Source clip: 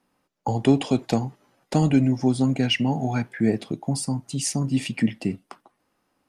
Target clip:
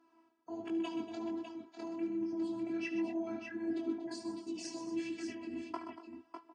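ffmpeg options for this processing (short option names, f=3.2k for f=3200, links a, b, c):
-filter_complex "[0:a]highshelf=f=3k:g=-11.5,alimiter=limit=-17.5dB:level=0:latency=1:release=11,areverse,acompressor=threshold=-37dB:ratio=16,areverse,afftfilt=real='hypot(re,im)*cos(PI*b)':imag='0':win_size=512:overlap=0.75,flanger=delay=18:depth=4.2:speed=1.4,highpass=200,equalizer=f=260:t=q:w=4:g=6,equalizer=f=610:t=q:w=4:g=-9,equalizer=f=990:t=q:w=4:g=4,equalizer=f=2.2k:t=q:w=4:g=-7,equalizer=f=3.8k:t=q:w=4:g=-7,lowpass=f=7.1k:w=0.5412,lowpass=f=7.1k:w=1.3066,asplit=2[a][b];[b]aecho=0:1:70|122|227|578:0.251|0.316|0.211|0.422[c];[a][c]amix=inputs=2:normalize=0,asetrate=42336,aresample=44100,volume=10.5dB" -ar 44100 -c:a aac -b:a 32k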